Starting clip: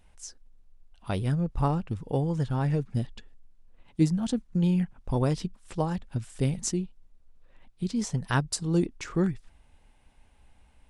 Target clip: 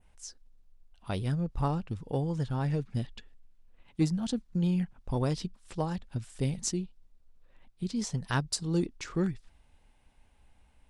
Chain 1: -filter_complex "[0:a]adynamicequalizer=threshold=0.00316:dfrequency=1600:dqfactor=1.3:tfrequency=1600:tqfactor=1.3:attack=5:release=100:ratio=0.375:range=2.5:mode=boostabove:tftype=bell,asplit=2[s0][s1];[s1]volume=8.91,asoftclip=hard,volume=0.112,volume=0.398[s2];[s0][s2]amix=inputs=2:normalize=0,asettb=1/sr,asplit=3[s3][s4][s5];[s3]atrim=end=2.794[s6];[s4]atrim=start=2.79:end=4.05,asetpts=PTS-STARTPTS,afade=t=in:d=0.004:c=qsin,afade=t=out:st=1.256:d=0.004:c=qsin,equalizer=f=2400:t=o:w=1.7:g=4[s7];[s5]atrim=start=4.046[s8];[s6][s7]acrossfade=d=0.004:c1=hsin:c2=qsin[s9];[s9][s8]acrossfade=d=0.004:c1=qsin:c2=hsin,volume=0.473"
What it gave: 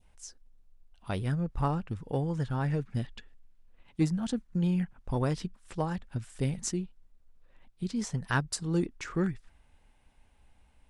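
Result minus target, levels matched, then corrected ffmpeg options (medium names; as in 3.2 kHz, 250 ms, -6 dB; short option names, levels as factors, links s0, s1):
2 kHz band +3.5 dB
-filter_complex "[0:a]adynamicequalizer=threshold=0.00316:dfrequency=4400:dqfactor=1.3:tfrequency=4400:tqfactor=1.3:attack=5:release=100:ratio=0.375:range=2.5:mode=boostabove:tftype=bell,asplit=2[s0][s1];[s1]volume=8.91,asoftclip=hard,volume=0.112,volume=0.398[s2];[s0][s2]amix=inputs=2:normalize=0,asettb=1/sr,asplit=3[s3][s4][s5];[s3]atrim=end=2.794[s6];[s4]atrim=start=2.79:end=4.05,asetpts=PTS-STARTPTS,afade=t=in:d=0.004:c=qsin,afade=t=out:st=1.256:d=0.004:c=qsin,equalizer=f=2400:t=o:w=1.7:g=4[s7];[s5]atrim=start=4.046[s8];[s6][s7]acrossfade=d=0.004:c1=hsin:c2=qsin[s9];[s9][s8]acrossfade=d=0.004:c1=qsin:c2=hsin,volume=0.473"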